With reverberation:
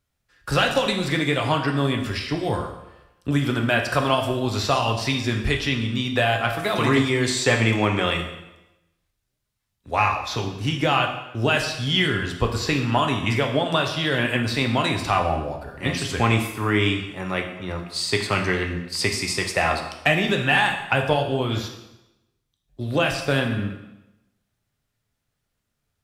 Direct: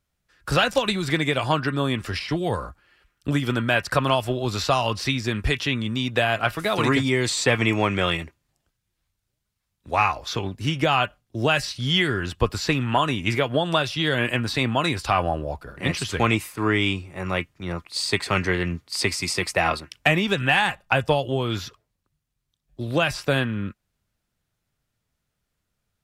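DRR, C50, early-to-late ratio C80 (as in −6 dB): 3.5 dB, 7.5 dB, 9.5 dB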